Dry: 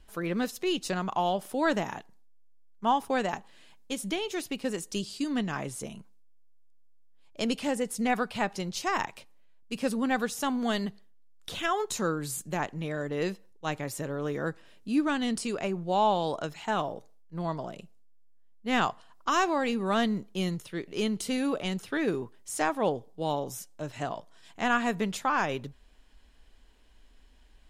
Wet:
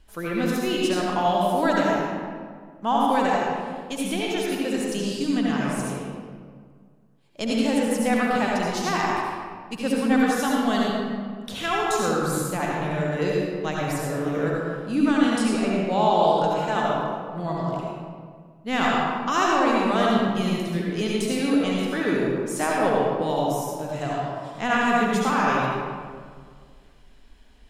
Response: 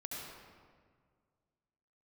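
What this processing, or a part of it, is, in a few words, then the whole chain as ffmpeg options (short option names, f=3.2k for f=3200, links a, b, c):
stairwell: -filter_complex "[1:a]atrim=start_sample=2205[a];[0:a][a]afir=irnorm=-1:irlink=0,volume=7dB"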